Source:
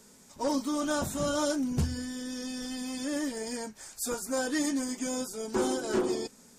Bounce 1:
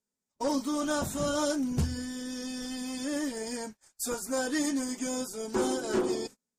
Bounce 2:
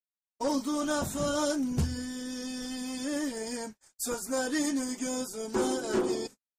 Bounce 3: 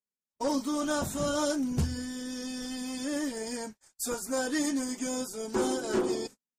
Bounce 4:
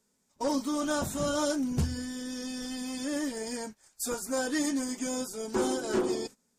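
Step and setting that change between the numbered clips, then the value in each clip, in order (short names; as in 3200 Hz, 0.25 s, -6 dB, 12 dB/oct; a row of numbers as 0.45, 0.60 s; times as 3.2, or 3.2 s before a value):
gate, range: -33, -60, -46, -18 dB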